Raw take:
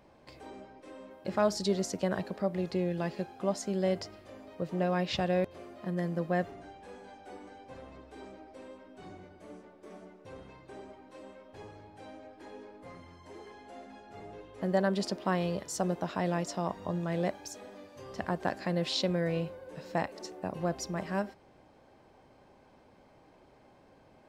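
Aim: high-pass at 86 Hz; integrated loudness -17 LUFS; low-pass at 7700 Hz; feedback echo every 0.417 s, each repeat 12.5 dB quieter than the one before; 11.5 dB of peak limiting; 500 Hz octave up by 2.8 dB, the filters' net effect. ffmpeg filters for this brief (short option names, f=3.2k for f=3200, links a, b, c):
-af "highpass=86,lowpass=7.7k,equalizer=f=500:t=o:g=3.5,alimiter=level_in=1dB:limit=-24dB:level=0:latency=1,volume=-1dB,aecho=1:1:417|834|1251:0.237|0.0569|0.0137,volume=21.5dB"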